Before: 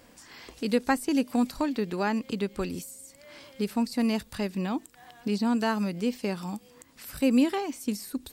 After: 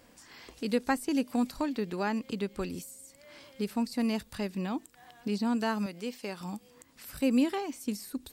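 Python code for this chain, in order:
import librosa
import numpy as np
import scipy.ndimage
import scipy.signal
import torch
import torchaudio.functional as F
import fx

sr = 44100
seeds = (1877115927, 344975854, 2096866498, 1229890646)

y = fx.low_shelf(x, sr, hz=280.0, db=-12.0, at=(5.86, 6.41))
y = y * 10.0 ** (-3.5 / 20.0)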